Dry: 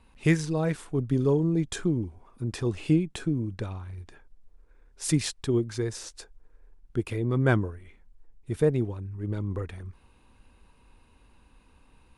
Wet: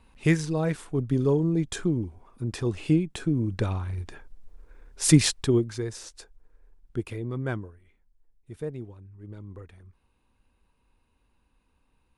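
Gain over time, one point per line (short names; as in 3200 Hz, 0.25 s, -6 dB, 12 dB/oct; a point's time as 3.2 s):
3.2 s +0.5 dB
3.69 s +7.5 dB
5.31 s +7.5 dB
5.81 s -2 dB
6.98 s -2 dB
7.75 s -11 dB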